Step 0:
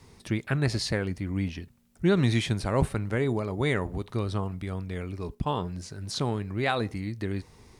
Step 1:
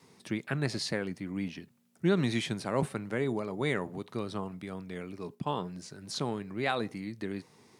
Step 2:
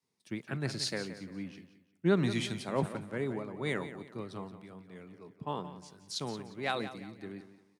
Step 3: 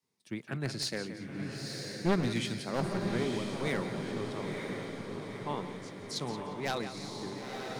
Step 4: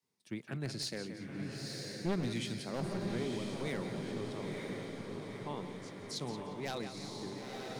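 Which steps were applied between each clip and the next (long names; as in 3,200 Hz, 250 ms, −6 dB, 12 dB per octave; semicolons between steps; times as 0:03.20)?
high-pass filter 140 Hz 24 dB per octave; tape wow and flutter 18 cents; level −3.5 dB
on a send: repeating echo 177 ms, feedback 50%, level −10 dB; on the sum: multiband upward and downward expander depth 70%; level −4.5 dB
wavefolder on the positive side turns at −27 dBFS; feedback delay with all-pass diffusion 952 ms, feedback 55%, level −4 dB
in parallel at −1 dB: brickwall limiter −27 dBFS, peak gain reduction 12 dB; on the sum: dynamic equaliser 1,300 Hz, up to −4 dB, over −42 dBFS, Q 0.86; level −8 dB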